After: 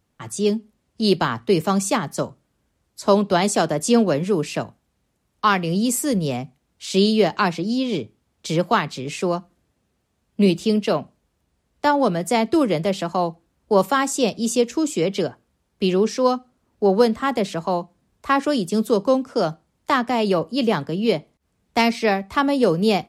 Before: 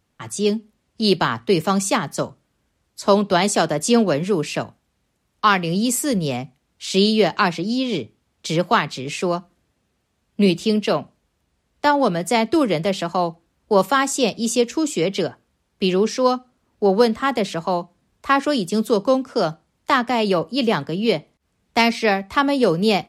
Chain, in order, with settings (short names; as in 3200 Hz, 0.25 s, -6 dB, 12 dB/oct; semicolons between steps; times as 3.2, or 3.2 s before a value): bell 2800 Hz -3.5 dB 2.8 oct